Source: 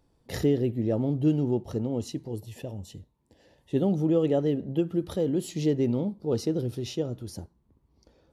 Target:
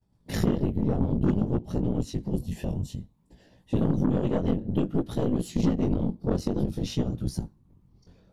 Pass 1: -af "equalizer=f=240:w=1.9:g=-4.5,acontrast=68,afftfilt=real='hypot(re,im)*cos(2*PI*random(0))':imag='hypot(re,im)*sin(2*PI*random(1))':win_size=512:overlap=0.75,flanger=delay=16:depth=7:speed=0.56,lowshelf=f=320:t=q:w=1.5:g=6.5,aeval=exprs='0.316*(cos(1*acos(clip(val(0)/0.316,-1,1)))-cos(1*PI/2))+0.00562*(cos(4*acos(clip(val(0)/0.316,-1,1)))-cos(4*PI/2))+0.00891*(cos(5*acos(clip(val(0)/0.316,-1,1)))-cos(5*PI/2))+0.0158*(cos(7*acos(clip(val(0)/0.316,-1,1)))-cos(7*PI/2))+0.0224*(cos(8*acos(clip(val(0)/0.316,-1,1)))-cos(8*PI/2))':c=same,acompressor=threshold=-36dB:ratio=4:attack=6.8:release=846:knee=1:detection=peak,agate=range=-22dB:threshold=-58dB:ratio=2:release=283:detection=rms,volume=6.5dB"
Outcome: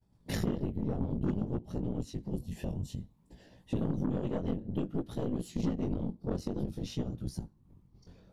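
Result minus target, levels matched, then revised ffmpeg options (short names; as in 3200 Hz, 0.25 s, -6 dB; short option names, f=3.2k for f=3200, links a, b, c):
compressor: peak gain reduction +8 dB
-af "equalizer=f=240:w=1.9:g=-4.5,acontrast=68,afftfilt=real='hypot(re,im)*cos(2*PI*random(0))':imag='hypot(re,im)*sin(2*PI*random(1))':win_size=512:overlap=0.75,flanger=delay=16:depth=7:speed=0.56,lowshelf=f=320:t=q:w=1.5:g=6.5,aeval=exprs='0.316*(cos(1*acos(clip(val(0)/0.316,-1,1)))-cos(1*PI/2))+0.00562*(cos(4*acos(clip(val(0)/0.316,-1,1)))-cos(4*PI/2))+0.00891*(cos(5*acos(clip(val(0)/0.316,-1,1)))-cos(5*PI/2))+0.0158*(cos(7*acos(clip(val(0)/0.316,-1,1)))-cos(7*PI/2))+0.0224*(cos(8*acos(clip(val(0)/0.316,-1,1)))-cos(8*PI/2))':c=same,acompressor=threshold=-25.5dB:ratio=4:attack=6.8:release=846:knee=1:detection=peak,agate=range=-22dB:threshold=-58dB:ratio=2:release=283:detection=rms,volume=6.5dB"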